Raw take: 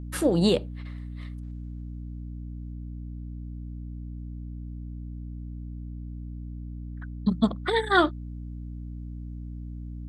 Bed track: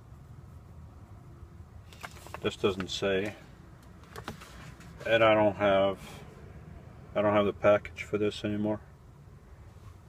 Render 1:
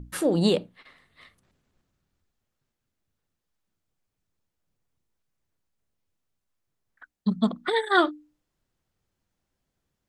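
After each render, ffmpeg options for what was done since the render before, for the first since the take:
-af "bandreject=f=60:t=h:w=6,bandreject=f=120:t=h:w=6,bandreject=f=180:t=h:w=6,bandreject=f=240:t=h:w=6,bandreject=f=300:t=h:w=6"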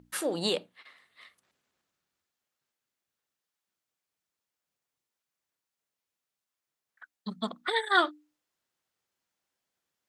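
-af "highpass=f=930:p=1"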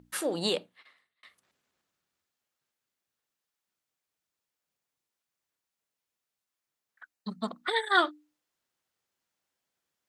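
-filter_complex "[0:a]asettb=1/sr,asplit=3[s0][s1][s2];[s0]atrim=end=7.134[s3];[s1]atrim=start=7.13:end=7.61,asetpts=PTS-STARTPTS,afade=t=in:d=0.004:c=qsin,afade=t=out:st=0.476:d=0.004:c=qsin,bandreject=f=3400:w=6.6[s4];[s2]atrim=start=7.606[s5];[s3][s4]acrossfade=d=0.004:c1=hsin:c2=qsin[s6];[s6][s5]acrossfade=d=0.004:c1=qsin:c2=hsin,asplit=2[s7][s8];[s7]atrim=end=1.23,asetpts=PTS-STARTPTS,afade=t=out:st=0.58:d=0.65[s9];[s8]atrim=start=1.23,asetpts=PTS-STARTPTS,afade=t=in:d=0.004:c=hsin[s10];[s9][s10]concat=n=2:v=0:a=1"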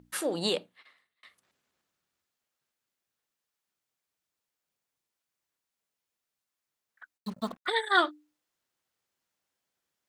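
-filter_complex "[0:a]asplit=3[s0][s1][s2];[s0]afade=t=out:st=7.17:d=0.02[s3];[s1]acrusher=bits=7:mix=0:aa=0.5,afade=t=in:st=7.17:d=0.02,afade=t=out:st=7.65:d=0.02[s4];[s2]afade=t=in:st=7.65:d=0.02[s5];[s3][s4][s5]amix=inputs=3:normalize=0"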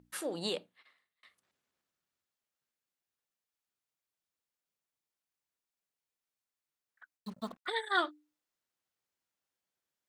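-af "volume=0.473"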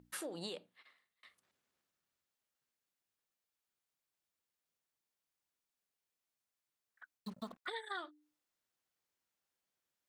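-af "acompressor=threshold=0.01:ratio=10"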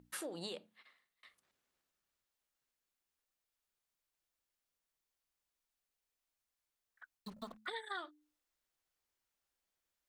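-af "bandreject=f=108.1:t=h:w=4,bandreject=f=216.2:t=h:w=4,asubboost=boost=5:cutoff=62"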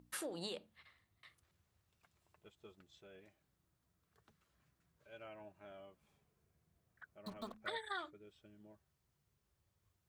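-filter_complex "[1:a]volume=0.0282[s0];[0:a][s0]amix=inputs=2:normalize=0"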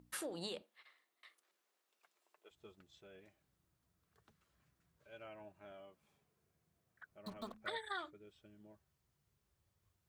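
-filter_complex "[0:a]asettb=1/sr,asplit=3[s0][s1][s2];[s0]atrim=end=0.624[s3];[s1]atrim=start=0.62:end=2.51,asetpts=PTS-STARTPTS,afade=t=in:d=0.004:c=qsin,afade=t=out:st=1.886:d=0.004:c=qsin,highpass=f=340:w=0.5412,highpass=f=340:w=1.3066[s4];[s2]atrim=start=2.506[s5];[s3][s4]acrossfade=d=0.004:c1=hsin:c2=qsin[s6];[s6][s5]acrossfade=d=0.004:c1=qsin:c2=hsin,asettb=1/sr,asplit=3[s7][s8][s9];[s7]atrim=end=5.744[s10];[s8]atrim=start=5.74:end=7.11,asetpts=PTS-STARTPTS,afade=t=in:d=0.004:c=qsin,afade=t=out:st=1.366:d=0.004:c=qsin,highpass=f=140:p=1[s11];[s9]atrim=start=7.106[s12];[s10][s11]acrossfade=d=0.004:c1=hsin:c2=qsin[s13];[s13][s12]acrossfade=d=0.004:c1=qsin:c2=hsin"

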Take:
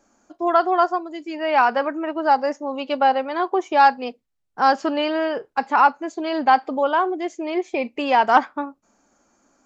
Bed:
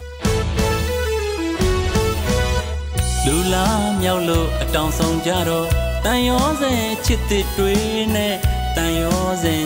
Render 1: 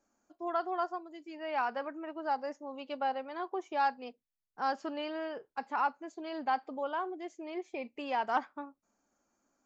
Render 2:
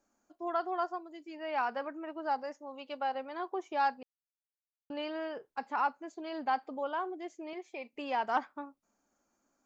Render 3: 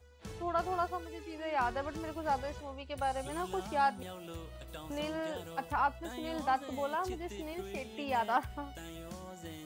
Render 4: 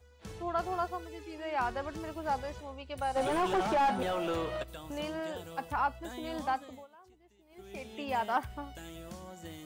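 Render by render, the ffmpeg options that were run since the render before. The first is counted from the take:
-af "volume=0.168"
-filter_complex "[0:a]asettb=1/sr,asplit=3[s0][s1][s2];[s0]atrim=end=2.434[s3];[s1]atrim=start=2.43:end=3.15,asetpts=PTS-STARTPTS,afade=t=in:d=0.004:c=qsin,afade=t=out:st=0.716:d=0.004:c=qsin,lowshelf=f=350:g=-7[s4];[s2]atrim=start=3.146[s5];[s3][s4]acrossfade=d=0.004:c1=hsin:c2=qsin[s6];[s6][s5]acrossfade=d=0.004:c1=qsin:c2=hsin,asettb=1/sr,asplit=3[s7][s8][s9];[s7]atrim=end=7.534[s10];[s8]atrim=start=7.53:end=7.93,asetpts=PTS-STARTPTS,afade=t=in:d=0.004:c=qsin,afade=t=out:st=0.396:d=0.004:c=qsin,highpass=f=560:p=1[s11];[s9]atrim=start=7.926[s12];[s10][s11]acrossfade=d=0.004:c1=hsin:c2=qsin[s13];[s13][s12]acrossfade=d=0.004:c1=qsin:c2=hsin,asplit=3[s14][s15][s16];[s14]atrim=end=4.03,asetpts=PTS-STARTPTS,afade=t=out:st=4.026:d=0.004:c=hsin[s17];[s15]atrim=start=4.03:end=4.9,asetpts=PTS-STARTPTS,volume=0[s18];[s16]atrim=start=4.9,asetpts=PTS-STARTPTS,afade=t=in:d=0.004:c=hsin[s19];[s17][s18][s19]concat=n=3:v=0:a=1"
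-filter_complex "[1:a]volume=0.0422[s0];[0:a][s0]amix=inputs=2:normalize=0"
-filter_complex "[0:a]asplit=3[s0][s1][s2];[s0]afade=t=out:st=3.15:d=0.02[s3];[s1]asplit=2[s4][s5];[s5]highpass=f=720:p=1,volume=28.2,asoftclip=type=tanh:threshold=0.112[s6];[s4][s6]amix=inputs=2:normalize=0,lowpass=f=1100:p=1,volume=0.501,afade=t=in:st=3.15:d=0.02,afade=t=out:st=4.62:d=0.02[s7];[s2]afade=t=in:st=4.62:d=0.02[s8];[s3][s7][s8]amix=inputs=3:normalize=0,asplit=3[s9][s10][s11];[s9]atrim=end=6.87,asetpts=PTS-STARTPTS,afade=t=out:st=6.46:d=0.41:silence=0.0707946[s12];[s10]atrim=start=6.87:end=7.49,asetpts=PTS-STARTPTS,volume=0.0708[s13];[s11]atrim=start=7.49,asetpts=PTS-STARTPTS,afade=t=in:d=0.41:silence=0.0707946[s14];[s12][s13][s14]concat=n=3:v=0:a=1"

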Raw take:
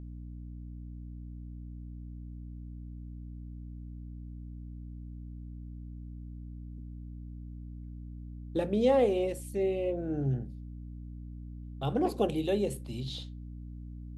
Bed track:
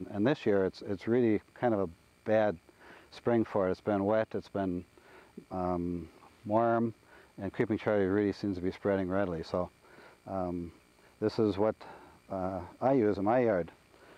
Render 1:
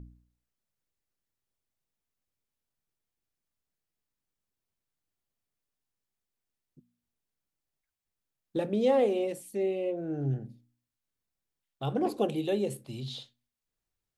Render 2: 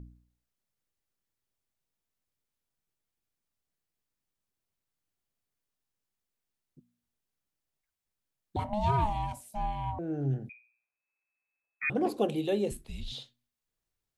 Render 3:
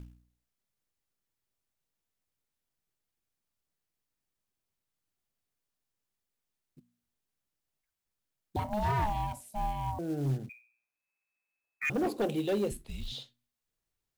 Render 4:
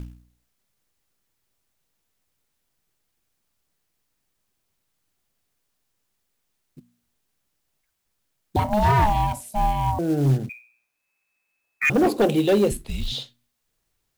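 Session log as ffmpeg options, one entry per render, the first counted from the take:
-af "bandreject=f=60:t=h:w=4,bandreject=f=120:t=h:w=4,bandreject=f=180:t=h:w=4,bandreject=f=240:t=h:w=4,bandreject=f=300:t=h:w=4"
-filter_complex "[0:a]asettb=1/sr,asplit=3[s0][s1][s2];[s0]atrim=end=8.564[s3];[s1]atrim=start=8.56:end=9.99,asetpts=PTS-STARTPTS,afade=t=in:d=0.004:c=qsin,afade=t=out:st=1.426:d=0.004:c=qsin,aeval=exprs='val(0)*sin(2*PI*420*n/s)':c=same[s4];[s2]atrim=start=9.986[s5];[s3][s4]acrossfade=d=0.004:c1=hsin:c2=qsin[s6];[s6][s5]acrossfade=d=0.004:c1=qsin:c2=hsin,asettb=1/sr,asplit=3[s7][s8][s9];[s7]atrim=end=10.494[s10];[s8]atrim=start=10.49:end=11.9,asetpts=PTS-STARTPTS,afade=t=in:d=0.004:c=qsin,afade=t=out:st=1.406:d=0.004:c=qsin,lowpass=f=2200:t=q:w=0.5098,lowpass=f=2200:t=q:w=0.6013,lowpass=f=2200:t=q:w=0.9,lowpass=f=2200:t=q:w=2.563,afreqshift=-2600[s11];[s9]atrim=start=11.896[s12];[s10][s11]acrossfade=d=0.004:c1=hsin:c2=qsin[s13];[s13][s12]acrossfade=d=0.004:c1=qsin:c2=hsin,asettb=1/sr,asplit=3[s14][s15][s16];[s14]atrim=end=12.714[s17];[s15]atrim=start=12.71:end=13.12,asetpts=PTS-STARTPTS,afade=t=in:d=0.004:c=qsin,afade=t=out:st=0.406:d=0.004:c=qsin,afreqshift=-160[s18];[s16]atrim=start=13.116[s19];[s17][s18]acrossfade=d=0.004:c1=hsin:c2=qsin[s20];[s20][s19]acrossfade=d=0.004:c1=qsin:c2=hsin"
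-af "acrusher=bits=6:mode=log:mix=0:aa=0.000001,volume=16.8,asoftclip=hard,volume=0.0596"
-af "volume=3.76"

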